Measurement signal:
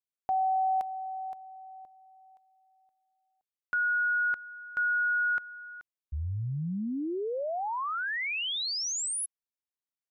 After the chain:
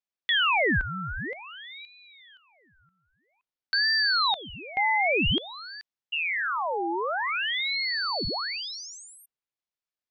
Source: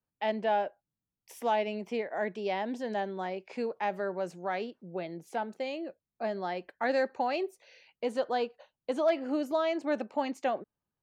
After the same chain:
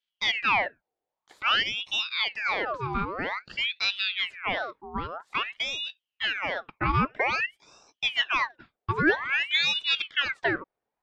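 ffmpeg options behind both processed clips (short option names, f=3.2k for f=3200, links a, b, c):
-af "acontrast=79,lowpass=3k,aeval=exprs='val(0)*sin(2*PI*1900*n/s+1900*0.7/0.51*sin(2*PI*0.51*n/s))':c=same"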